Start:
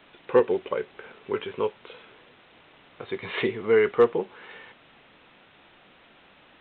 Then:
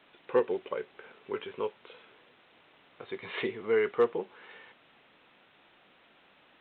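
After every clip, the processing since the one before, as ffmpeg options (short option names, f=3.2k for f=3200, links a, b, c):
-af "lowshelf=f=120:g=-9,volume=-6dB"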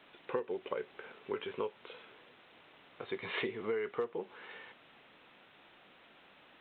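-af "acompressor=threshold=-33dB:ratio=10,volume=1dB"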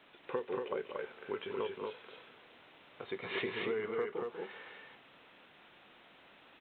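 -af "aecho=1:1:192.4|233.2:0.355|0.708,volume=-1.5dB"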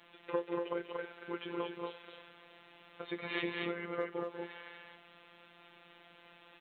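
-af "afftfilt=real='hypot(re,im)*cos(PI*b)':imag='0':win_size=1024:overlap=0.75,volume=4dB"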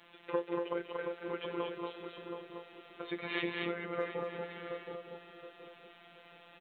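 -filter_complex "[0:a]asplit=2[a][b];[b]adelay=724,lowpass=f=1.1k:p=1,volume=-5dB,asplit=2[c][d];[d]adelay=724,lowpass=f=1.1k:p=1,volume=0.38,asplit=2[e][f];[f]adelay=724,lowpass=f=1.1k:p=1,volume=0.38,asplit=2[g][h];[h]adelay=724,lowpass=f=1.1k:p=1,volume=0.38,asplit=2[i][j];[j]adelay=724,lowpass=f=1.1k:p=1,volume=0.38[k];[a][c][e][g][i][k]amix=inputs=6:normalize=0,volume=1dB"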